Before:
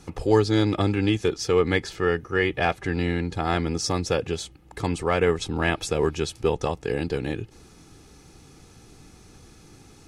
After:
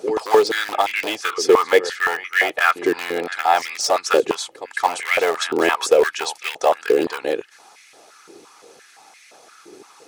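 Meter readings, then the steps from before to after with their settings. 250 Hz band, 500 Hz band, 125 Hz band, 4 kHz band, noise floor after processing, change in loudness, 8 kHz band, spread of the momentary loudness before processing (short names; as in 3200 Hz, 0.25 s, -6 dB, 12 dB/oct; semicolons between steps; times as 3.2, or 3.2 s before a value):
-2.5 dB, +6.0 dB, under -20 dB, +6.5 dB, -50 dBFS, +5.5 dB, +7.5 dB, 8 LU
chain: harmonic-percussive split percussive +6 dB; pre-echo 0.221 s -15 dB; in parallel at -11.5 dB: wrapped overs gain 14.5 dB; on the sum: stepped high-pass 5.8 Hz 390–2100 Hz; gain -1 dB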